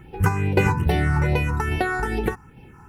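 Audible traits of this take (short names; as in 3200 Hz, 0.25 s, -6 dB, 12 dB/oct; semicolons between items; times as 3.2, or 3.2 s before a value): a quantiser's noise floor 12-bit, dither none; phasing stages 4, 2.4 Hz, lowest notch 560–1200 Hz; random-step tremolo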